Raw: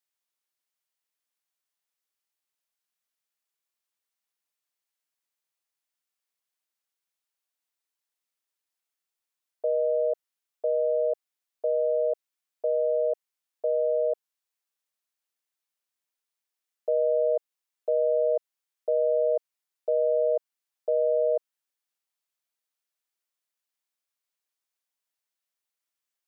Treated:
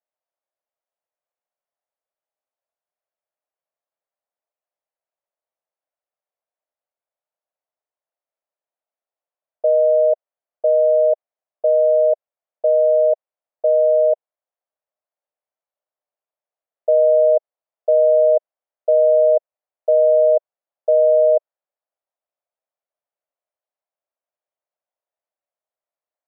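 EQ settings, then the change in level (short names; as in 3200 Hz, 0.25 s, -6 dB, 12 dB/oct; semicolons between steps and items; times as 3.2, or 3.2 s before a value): resonant high-pass 610 Hz, resonance Q 3.8; air absorption 460 m; tilt -3 dB/oct; 0.0 dB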